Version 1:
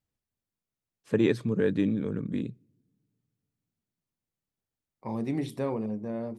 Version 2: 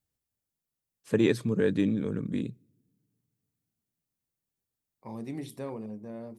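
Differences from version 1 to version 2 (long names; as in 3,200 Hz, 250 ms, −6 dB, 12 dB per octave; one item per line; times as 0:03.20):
second voice −7.0 dB
master: add high-shelf EQ 6,300 Hz +11 dB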